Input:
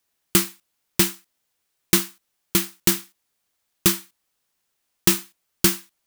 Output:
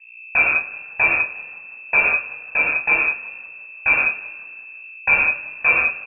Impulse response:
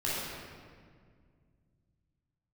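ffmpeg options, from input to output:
-filter_complex "[0:a]aeval=exprs='val(0)+0.00447*(sin(2*PI*60*n/s)+sin(2*PI*2*60*n/s)/2+sin(2*PI*3*60*n/s)/3+sin(2*PI*4*60*n/s)/4+sin(2*PI*5*60*n/s)/5)':c=same,asplit=6[s0][s1][s2][s3][s4][s5];[s1]adelay=178,afreqshift=-35,volume=0.112[s6];[s2]adelay=356,afreqshift=-70,volume=0.0631[s7];[s3]adelay=534,afreqshift=-105,volume=0.0351[s8];[s4]adelay=712,afreqshift=-140,volume=0.0197[s9];[s5]adelay=890,afreqshift=-175,volume=0.0111[s10];[s0][s6][s7][s8][s9][s10]amix=inputs=6:normalize=0[s11];[1:a]atrim=start_sample=2205,afade=t=out:st=0.26:d=0.01,atrim=end_sample=11907[s12];[s11][s12]afir=irnorm=-1:irlink=0,lowpass=f=2300:t=q:w=0.5098,lowpass=f=2300:t=q:w=0.6013,lowpass=f=2300:t=q:w=0.9,lowpass=f=2300:t=q:w=2.563,afreqshift=-2700"

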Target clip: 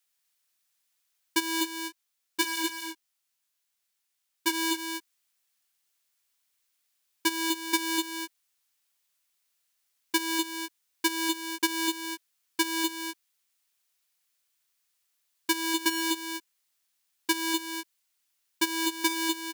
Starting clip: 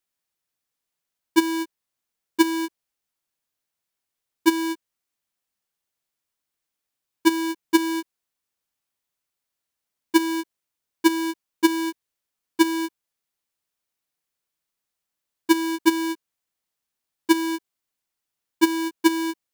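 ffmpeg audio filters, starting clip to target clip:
-filter_complex "[0:a]asplit=3[s0][s1][s2];[s0]afade=t=out:st=1.63:d=0.02[s3];[s1]flanger=delay=16.5:depth=3.1:speed=1.6,afade=t=in:st=1.63:d=0.02,afade=t=out:st=4.53:d=0.02[s4];[s2]afade=t=in:st=4.53:d=0.02[s5];[s3][s4][s5]amix=inputs=3:normalize=0,acompressor=threshold=0.0708:ratio=6,tiltshelf=f=970:g=-7.5,aecho=1:1:248:0.501"

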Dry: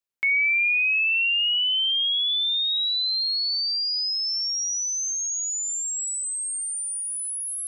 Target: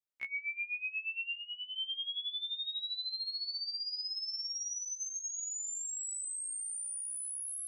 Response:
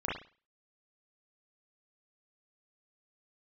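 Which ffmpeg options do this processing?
-filter_complex "[0:a]asplit=3[s0][s1][s2];[s0]afade=t=out:st=1.35:d=0.02[s3];[s1]lowpass=1600,afade=t=in:st=1.35:d=0.02,afade=t=out:st=1.77:d=0.02[s4];[s2]afade=t=in:st=1.77:d=0.02[s5];[s3][s4][s5]amix=inputs=3:normalize=0,asettb=1/sr,asplit=3[s6][s7][s8];[s6]atrim=end=4.794[s9];[s7]atrim=start=4.79:end=5.28,asetpts=PTS-STARTPTS,afade=t=in:d=0.004:c=qsin,afade=t=out:st=0.486:d=0.004:c=qsin,aecho=1:1:6.1:0.81,atrim=end_sample=21609[s10];[s8]atrim=start=5.276[s11];[s9][s10]acrossfade=d=0.004:c1=hsin:c2=qsin[s12];[s12][s11]acrossfade=d=0.004:c1=qsin:c2=hsin,acompressor=threshold=0.0398:ratio=12,afftfilt=real='re*1.73*eq(mod(b,3),0)':imag='im*1.73*eq(mod(b,3),0)':win_size=2048:overlap=0.75,volume=0.473"

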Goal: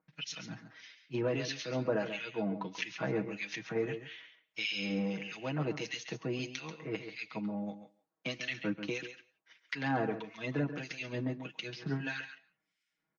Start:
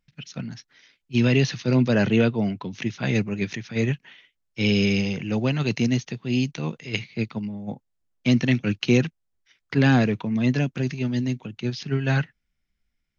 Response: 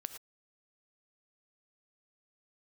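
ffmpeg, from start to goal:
-filter_complex "[0:a]highpass=220,equalizer=f=980:t=o:w=1.9:g=5,aecho=1:1:6.3:0.85,acompressor=threshold=0.0178:ratio=2.5,acrossover=split=1600[s0][s1];[s0]aeval=exprs='val(0)*(1-1/2+1/2*cos(2*PI*1.6*n/s))':c=same[s2];[s1]aeval=exprs='val(0)*(1-1/2-1/2*cos(2*PI*1.6*n/s))':c=same[s3];[s2][s3]amix=inputs=2:normalize=0,aecho=1:1:137:0.299,asplit=2[s4][s5];[1:a]atrim=start_sample=2205,asetrate=28224,aresample=44100,lowpass=5900[s6];[s5][s6]afir=irnorm=-1:irlink=0,volume=0.282[s7];[s4][s7]amix=inputs=2:normalize=0" -ar 22050 -c:a libmp3lame -b:a 40k

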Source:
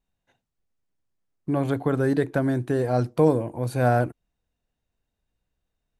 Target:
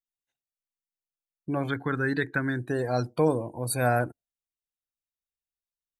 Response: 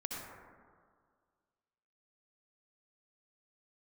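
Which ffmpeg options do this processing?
-filter_complex "[0:a]asettb=1/sr,asplit=3[s0][s1][s2];[s0]atrim=end=1.684[s3];[s1]atrim=start=1.68:end=2.59,asetpts=PTS-STARTPTS,afade=t=in:d=0.004:c=qsin,afade=t=out:st=0.906:d=0.004:c=qsin,equalizer=f=630:t=o:w=0.67:g=-11,equalizer=f=1600:t=o:w=0.67:g=6,equalizer=f=10000:t=o:w=0.67:g=-7[s4];[s2]atrim=start=2.586[s5];[s3][s4]acrossfade=d=0.004:c1=hsin:c2=qsin[s6];[s6][s5]acrossfade=d=0.004:c1=qsin:c2=hsin,afftdn=nr=23:nf=-43,crystalizer=i=8:c=0,adynamicequalizer=threshold=0.00398:dfrequency=9200:dqfactor=2.5:tfrequency=9200:tqfactor=2.5:attack=5:release=100:ratio=0.375:range=2.5:mode=boostabove:tftype=bell,volume=0.531"

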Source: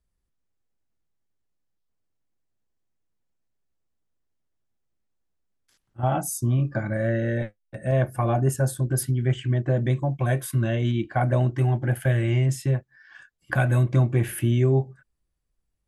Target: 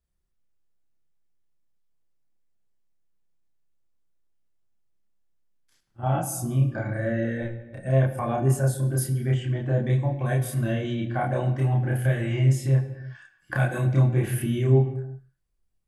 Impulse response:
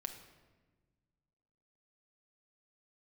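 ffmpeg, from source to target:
-filter_complex "[0:a]asplit=2[s0][s1];[1:a]atrim=start_sample=2205,afade=t=out:st=0.4:d=0.01,atrim=end_sample=18081,adelay=30[s2];[s1][s2]afir=irnorm=-1:irlink=0,volume=1.41[s3];[s0][s3]amix=inputs=2:normalize=0,volume=0.562"

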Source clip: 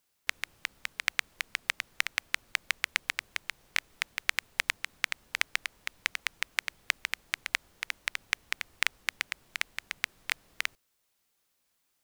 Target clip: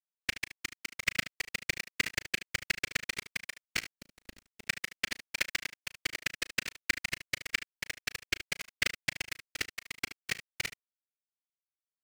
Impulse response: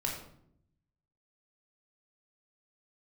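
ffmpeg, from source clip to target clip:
-filter_complex "[0:a]aeval=exprs='0.794*(cos(1*acos(clip(val(0)/0.794,-1,1)))-cos(1*PI/2))+0.0562*(cos(2*acos(clip(val(0)/0.794,-1,1)))-cos(2*PI/2))+0.0708*(cos(6*acos(clip(val(0)/0.794,-1,1)))-cos(6*PI/2))':c=same,asettb=1/sr,asplit=3[s0][s1][s2];[s0]atrim=end=3.894[s3];[s1]atrim=start=3.89:end=4.64,asetpts=PTS-STARTPTS,afade=t=in:d=0.004:c=qsin,afade=t=out:st=0.746:d=0.004:c=qsin,acrossover=split=400[s4][s5];[s5]acompressor=threshold=0.00631:ratio=6[s6];[s4][s6]amix=inputs=2:normalize=0[s7];[s2]atrim=start=4.636[s8];[s3][s7]acrossfade=d=0.004:c1=hsin:c2=qsin[s9];[s9][s8]acrossfade=d=0.004:c1=qsin:c2=hsin,afftfilt=real='hypot(re,im)*cos(2*PI*random(0))':imag='hypot(re,im)*sin(2*PI*random(1))':win_size=512:overlap=0.75,aeval=exprs='sgn(val(0))*max(abs(val(0))-0.00668,0)':c=same,asplit=2[s10][s11];[s11]aecho=0:1:36|74:0.133|0.211[s12];[s10][s12]amix=inputs=2:normalize=0,volume=1.78"

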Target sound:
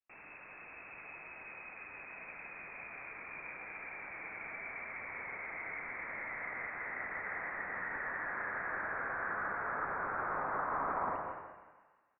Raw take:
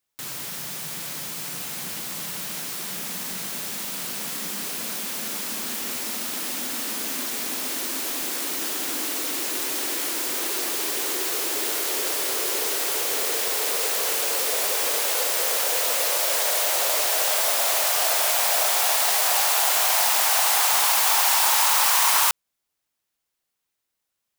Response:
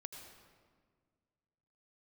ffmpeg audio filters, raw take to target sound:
-filter_complex "[0:a]asetrate=88200,aresample=44100,asplit=2[s0][s1];[s1]adelay=163.3,volume=0.355,highshelf=f=4000:g=-3.67[s2];[s0][s2]amix=inputs=2:normalize=0[s3];[1:a]atrim=start_sample=2205[s4];[s3][s4]afir=irnorm=-1:irlink=0,lowpass=f=2500:t=q:w=0.5098,lowpass=f=2500:t=q:w=0.6013,lowpass=f=2500:t=q:w=0.9,lowpass=f=2500:t=q:w=2.563,afreqshift=-2900,volume=0.596"

